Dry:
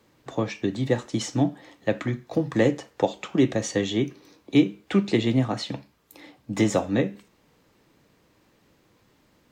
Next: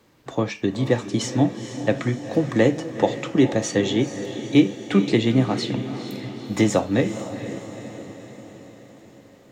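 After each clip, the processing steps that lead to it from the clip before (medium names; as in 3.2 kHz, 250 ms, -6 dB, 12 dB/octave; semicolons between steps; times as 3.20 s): echo that smears into a reverb 467 ms, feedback 58%, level -10.5 dB; trim +3 dB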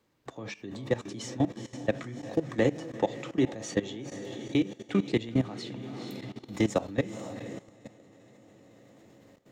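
level held to a coarse grid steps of 17 dB; trim -5 dB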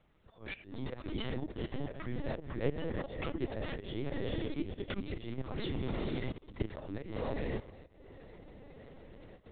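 tracing distortion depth 0.2 ms; slow attack 254 ms; LPC vocoder at 8 kHz pitch kept; trim +4 dB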